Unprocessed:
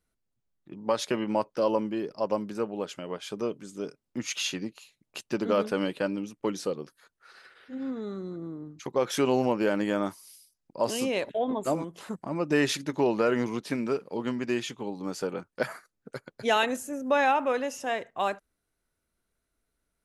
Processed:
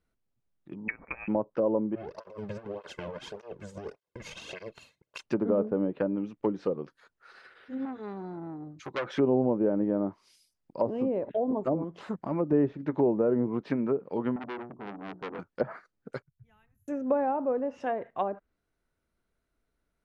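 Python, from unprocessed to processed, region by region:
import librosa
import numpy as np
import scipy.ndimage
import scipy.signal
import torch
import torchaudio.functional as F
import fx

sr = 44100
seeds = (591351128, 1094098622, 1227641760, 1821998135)

y = fx.chain(x, sr, fx.highpass(hz=250.0, slope=12),
    fx.high_shelf(hz=2100.0, db=-8.0),
    fx.freq_invert(carrier_hz=2800), at=(0.88, 1.28))
y = fx.chain(y, sr, fx.lower_of_two(delay_ms=1.9),
    fx.over_compress(threshold_db=-38.0, ratio=-1.0),
    fx.flanger_cancel(hz=1.7, depth_ms=3.0), at=(1.95, 5.24))
y = fx.chain(y, sr, fx.notch_comb(f0_hz=230.0),
    fx.transformer_sat(knee_hz=3400.0), at=(7.85, 9.16))
y = fx.chain(y, sr, fx.gaussian_blur(sigma=10.0),
    fx.hum_notches(base_hz=60, count=6),
    fx.transformer_sat(knee_hz=2200.0), at=(14.36, 15.39))
y = fx.chain(y, sr, fx.cheby2_bandstop(low_hz=230.0, high_hz=9300.0, order=4, stop_db=40),
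    fx.high_shelf(hz=9500.0, db=-8.0), at=(16.22, 16.88))
y = fx.env_lowpass_down(y, sr, base_hz=580.0, full_db=-24.0)
y = fx.lowpass(y, sr, hz=2500.0, slope=6)
y = F.gain(torch.from_numpy(y), 1.5).numpy()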